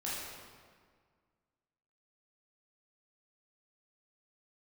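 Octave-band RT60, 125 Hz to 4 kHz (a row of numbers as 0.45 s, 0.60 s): 2.1 s, 2.0 s, 1.8 s, 1.8 s, 1.5 s, 1.2 s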